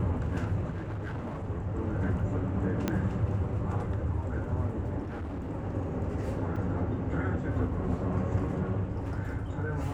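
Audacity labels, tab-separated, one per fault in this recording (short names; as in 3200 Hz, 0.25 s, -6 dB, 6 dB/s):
0.710000	1.500000	clipped -32 dBFS
2.880000	2.880000	pop -14 dBFS
5.020000	5.510000	clipped -33 dBFS
6.560000	6.560000	gap 4.4 ms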